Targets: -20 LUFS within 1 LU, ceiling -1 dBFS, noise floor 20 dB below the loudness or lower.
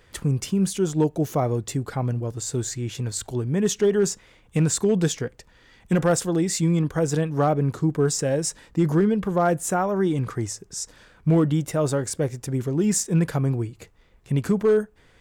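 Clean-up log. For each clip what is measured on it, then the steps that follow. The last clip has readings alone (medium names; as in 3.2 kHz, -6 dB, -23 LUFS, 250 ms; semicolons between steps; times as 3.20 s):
clipped samples 0.3%; clipping level -12.5 dBFS; loudness -23.5 LUFS; peak level -12.5 dBFS; loudness target -20.0 LUFS
-> clip repair -12.5 dBFS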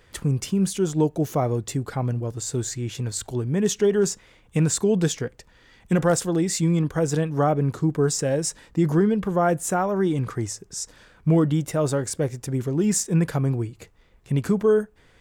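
clipped samples 0.0%; loudness -23.5 LUFS; peak level -9.5 dBFS; loudness target -20.0 LUFS
-> trim +3.5 dB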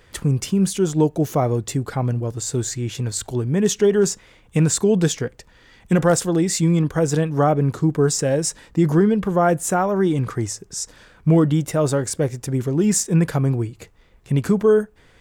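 loudness -20.0 LUFS; peak level -6.0 dBFS; noise floor -52 dBFS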